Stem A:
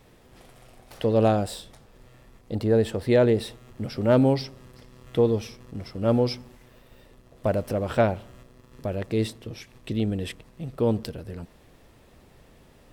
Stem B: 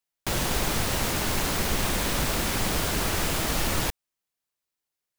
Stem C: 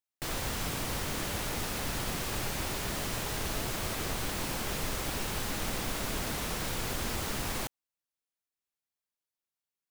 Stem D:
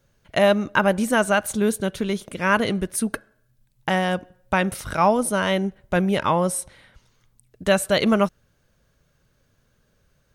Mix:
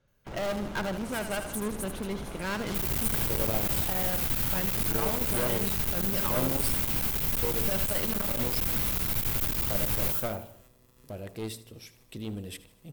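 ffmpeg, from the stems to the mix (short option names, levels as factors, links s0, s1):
-filter_complex "[0:a]bandreject=f=57.07:t=h:w=4,bandreject=f=114.14:t=h:w=4,bandreject=f=171.21:t=h:w=4,bandreject=f=228.28:t=h:w=4,bandreject=f=285.35:t=h:w=4,bandreject=f=342.42:t=h:w=4,bandreject=f=399.49:t=h:w=4,bandreject=f=456.56:t=h:w=4,bandreject=f=513.63:t=h:w=4,bandreject=f=570.7:t=h:w=4,bandreject=f=627.77:t=h:w=4,bandreject=f=684.84:t=h:w=4,bandreject=f=741.91:t=h:w=4,bandreject=f=798.98:t=h:w=4,bandreject=f=856.05:t=h:w=4,bandreject=f=913.12:t=h:w=4,bandreject=f=970.19:t=h:w=4,bandreject=f=1027.26:t=h:w=4,bandreject=f=1084.33:t=h:w=4,bandreject=f=1141.4:t=h:w=4,bandreject=f=1198.47:t=h:w=4,adelay=2250,volume=0.335,asplit=2[s0][s1];[s1]volume=0.141[s2];[1:a]adynamicsmooth=sensitivity=1:basefreq=810,volume=0.299[s3];[2:a]bass=f=250:g=10,treble=f=4000:g=-4,crystalizer=i=3.5:c=0,adelay=2450,volume=0.75,asplit=2[s4][s5];[s5]volume=0.168[s6];[3:a]asoftclip=type=tanh:threshold=0.106,volume=0.501,asplit=2[s7][s8];[s8]volume=0.282[s9];[s4][s7]amix=inputs=2:normalize=0,lowpass=2900,alimiter=limit=0.0794:level=0:latency=1:release=39,volume=1[s10];[s2][s6][s9]amix=inputs=3:normalize=0,aecho=0:1:78|156|234|312|390|468|546:1|0.47|0.221|0.104|0.0488|0.0229|0.0108[s11];[s0][s3][s10][s11]amix=inputs=4:normalize=0,aeval=exprs='clip(val(0),-1,0.0211)':c=same,aemphasis=mode=production:type=50fm,bandreject=f=1800:w=24"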